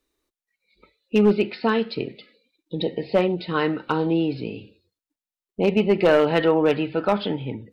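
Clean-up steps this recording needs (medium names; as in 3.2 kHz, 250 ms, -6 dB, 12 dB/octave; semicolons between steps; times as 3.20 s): clip repair -10 dBFS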